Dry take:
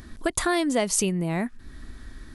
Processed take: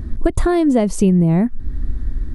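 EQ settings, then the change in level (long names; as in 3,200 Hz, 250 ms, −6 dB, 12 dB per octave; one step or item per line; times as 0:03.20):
tilt shelving filter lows +8.5 dB
low-shelf EQ 130 Hz +11 dB
+2.0 dB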